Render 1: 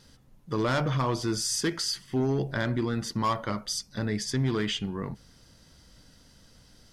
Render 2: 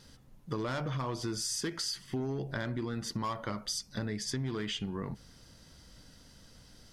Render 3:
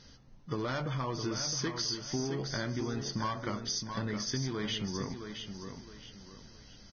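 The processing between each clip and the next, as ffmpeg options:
ffmpeg -i in.wav -af "acompressor=threshold=-32dB:ratio=6" out.wav
ffmpeg -i in.wav -af "aecho=1:1:665|1330|1995|2660:0.422|0.135|0.0432|0.0138" -ar 16000 -c:a libvorbis -b:a 16k out.ogg

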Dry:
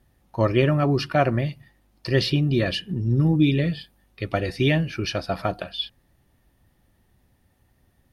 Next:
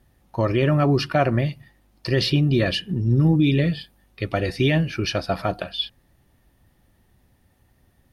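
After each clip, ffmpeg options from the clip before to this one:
ffmpeg -i in.wav -af "alimiter=level_in=11dB:limit=-1dB:release=50:level=0:latency=1,volume=-8.5dB" out.wav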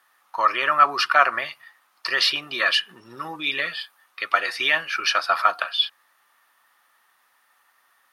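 ffmpeg -i in.wav -af "highpass=frequency=1200:width_type=q:width=3.6,volume=4dB" out.wav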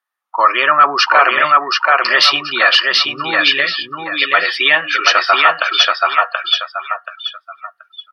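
ffmpeg -i in.wav -af "aecho=1:1:730|1460|2190|2920|3650:0.708|0.255|0.0917|0.033|0.0119,apsyclip=11.5dB,afftdn=noise_reduction=29:noise_floor=-25,volume=-2dB" out.wav

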